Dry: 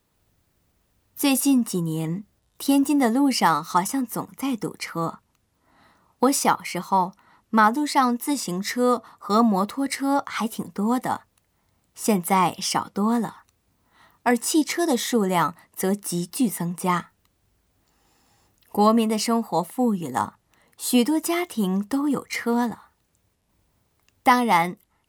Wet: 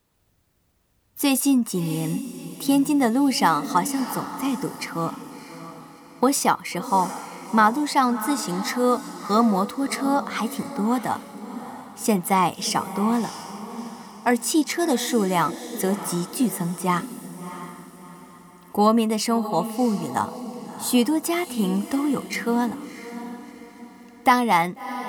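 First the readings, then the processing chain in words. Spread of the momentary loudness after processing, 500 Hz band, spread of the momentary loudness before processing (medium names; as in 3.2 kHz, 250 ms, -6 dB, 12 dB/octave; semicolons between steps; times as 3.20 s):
16 LU, +0.5 dB, 10 LU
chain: echo that smears into a reverb 663 ms, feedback 41%, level -12 dB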